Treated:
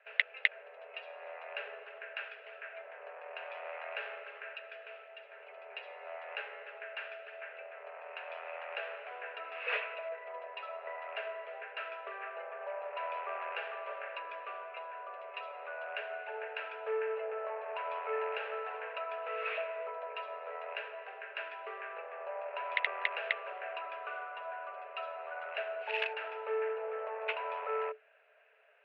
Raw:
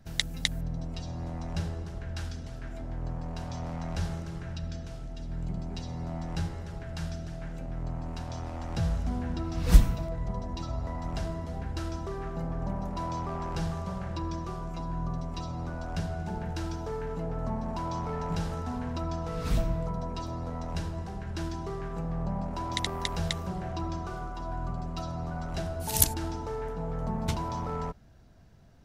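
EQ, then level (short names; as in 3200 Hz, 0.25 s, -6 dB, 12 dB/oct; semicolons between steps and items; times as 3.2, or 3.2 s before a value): rippled Chebyshev high-pass 420 Hz, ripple 9 dB; synth low-pass 2600 Hz, resonance Q 9.9; air absorption 410 m; +5.0 dB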